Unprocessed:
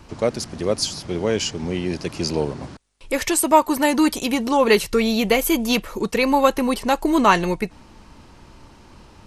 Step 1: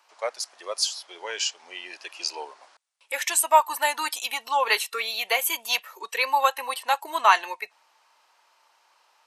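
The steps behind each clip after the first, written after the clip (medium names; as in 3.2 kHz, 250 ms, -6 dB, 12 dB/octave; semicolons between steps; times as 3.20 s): high-pass 690 Hz 24 dB/octave; spectral noise reduction 9 dB; trim -1 dB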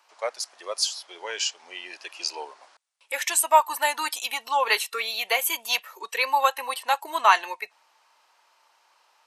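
no audible change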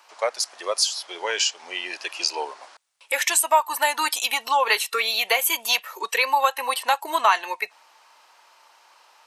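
compression 2:1, threshold -29 dBFS, peak gain reduction 10 dB; trim +8 dB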